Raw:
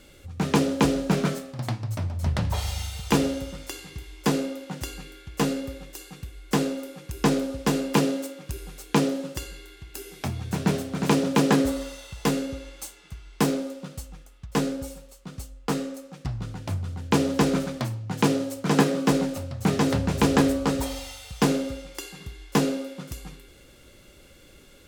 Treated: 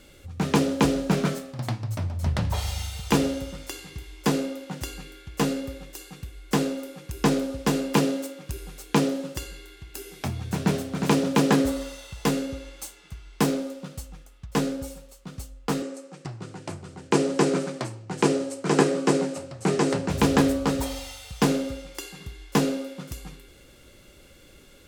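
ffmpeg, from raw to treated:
-filter_complex "[0:a]asettb=1/sr,asplit=3[a][b][c];[a]atrim=end=15.824[d];[b]atrim=start=15.82:end=20.1,asetpts=PTS-STARTPTS,afade=t=in:d=0.004:c=qsin,afade=t=out:st=4.276:d=0.004:c=qsin,highpass=f=140:w=0.5412,highpass=f=140:w=1.3066,equalizer=f=230:t=q:w=4:g=-8,equalizer=f=370:t=q:w=4:g=8,equalizer=f=3.5k:t=q:w=4:g=-4,equalizer=f=8.2k:t=q:w=4:g=5,lowpass=f=9.8k:w=0.5412,lowpass=f=9.8k:w=1.3066[e];[c]atrim=start=20.096[f];[d][e]acrossfade=d=0.004:c1=hsin:c2=qsin[g];[g][f]acrossfade=d=0.004:c1=qsin:c2=hsin"

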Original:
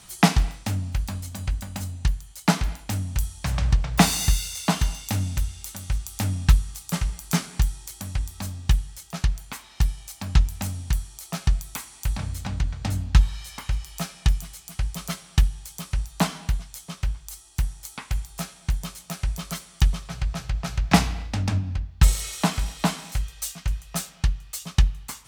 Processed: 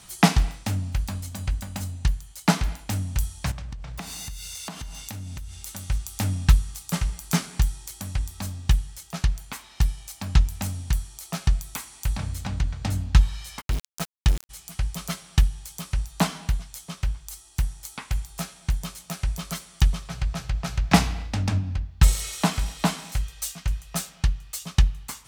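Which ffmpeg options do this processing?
-filter_complex "[0:a]asettb=1/sr,asplit=3[a][b][c];[a]atrim=end=3.514[d];[b]atrim=start=3.51:end=5.67,asetpts=PTS-STARTPTS,afade=t=in:d=0.004:c=qsin,afade=t=out:st=2.156:d=0.004:c=qsin,acompressor=threshold=-32dB:ratio=10:attack=3.2:release=140:knee=1:detection=peak[e];[c]atrim=start=5.666[f];[d][e]acrossfade=d=0.004:c1=hsin:c2=qsin[g];[g][f]acrossfade=d=0.004:c1=qsin:c2=hsin,asplit=3[h][i][j];[h]afade=t=out:st=13.6:d=0.02[k];[i]aeval=exprs='val(0)*gte(abs(val(0)),0.0473)':c=same,afade=t=in:st=13.6:d=0.02,afade=t=out:st=14.49:d=0.02[l];[j]afade=t=in:st=14.49:d=0.02[m];[k][l][m]amix=inputs=3:normalize=0"

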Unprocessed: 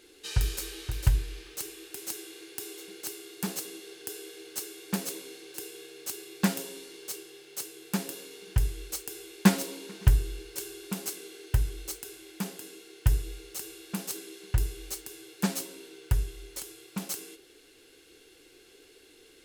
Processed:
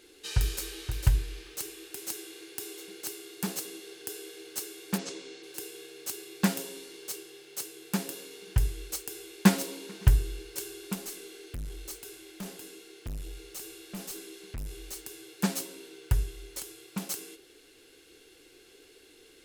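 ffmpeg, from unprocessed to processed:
-filter_complex "[0:a]asplit=3[a][b][c];[a]afade=t=out:st=4.97:d=0.02[d];[b]lowpass=f=6.9k:w=0.5412,lowpass=f=6.9k:w=1.3066,afade=t=in:st=4.97:d=0.02,afade=t=out:st=5.42:d=0.02[e];[c]afade=t=in:st=5.42:d=0.02[f];[d][e][f]amix=inputs=3:normalize=0,asettb=1/sr,asplit=3[g][h][i];[g]atrim=end=10.954[j];[h]atrim=start=10.95:end=14.96,asetpts=PTS-STARTPTS,afade=t=in:d=0.004:c=qsin,afade=t=out:st=4.006:d=0.004:c=qsin,aeval=exprs='(tanh(50.1*val(0)+0.1)-tanh(0.1))/50.1':c=same[k];[i]atrim=start=14.956[l];[j][k]acrossfade=d=0.004:c1=hsin:c2=qsin[m];[m][l]acrossfade=d=0.004:c1=qsin:c2=hsin"

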